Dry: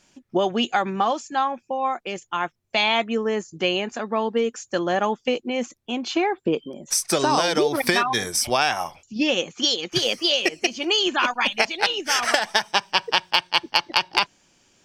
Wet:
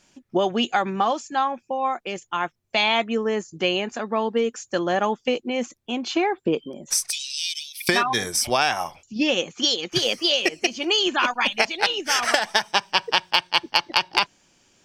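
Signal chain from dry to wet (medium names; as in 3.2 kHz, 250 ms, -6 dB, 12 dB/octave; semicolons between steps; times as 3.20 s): 7.10–7.89 s: steep high-pass 2.4 kHz 72 dB/octave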